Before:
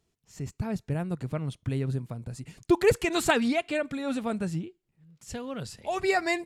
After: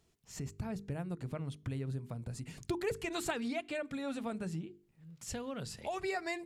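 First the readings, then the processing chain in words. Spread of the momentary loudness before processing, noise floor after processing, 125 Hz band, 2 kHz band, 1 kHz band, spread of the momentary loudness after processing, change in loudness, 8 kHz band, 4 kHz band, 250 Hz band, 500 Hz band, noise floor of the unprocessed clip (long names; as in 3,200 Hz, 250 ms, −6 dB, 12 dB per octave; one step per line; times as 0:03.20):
16 LU, −71 dBFS, −8.0 dB, −11.0 dB, −10.5 dB, 8 LU, −10.5 dB, −7.0 dB, −9.5 dB, −10.0 dB, −11.5 dB, −77 dBFS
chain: mains-hum notches 50/100/150/200/250/300/350/400/450 Hz
downward compressor 2.5 to 1, threshold −44 dBFS, peak gain reduction 17.5 dB
level +3 dB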